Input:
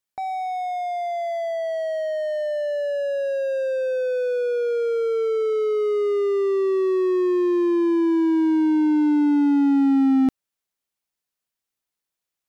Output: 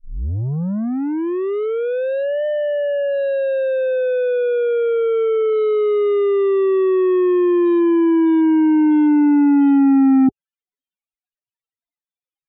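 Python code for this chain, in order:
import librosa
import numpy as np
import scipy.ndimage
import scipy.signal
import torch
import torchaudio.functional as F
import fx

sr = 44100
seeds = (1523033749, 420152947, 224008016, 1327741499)

y = fx.tape_start_head(x, sr, length_s=2.46)
y = fx.spec_topn(y, sr, count=16)
y = fx.brickwall_lowpass(y, sr, high_hz=3900.0)
y = y * librosa.db_to_amplitude(5.0)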